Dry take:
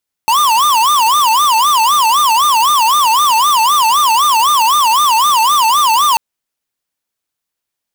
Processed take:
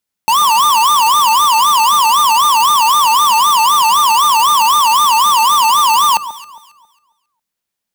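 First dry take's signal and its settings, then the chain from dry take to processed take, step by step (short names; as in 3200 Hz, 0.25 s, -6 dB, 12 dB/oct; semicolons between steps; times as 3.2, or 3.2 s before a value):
siren wail 878–1210 Hz 3.9/s square -10.5 dBFS 5.89 s
bell 200 Hz +9 dB 0.28 oct; echo with dull and thin repeats by turns 0.136 s, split 1300 Hz, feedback 51%, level -12 dB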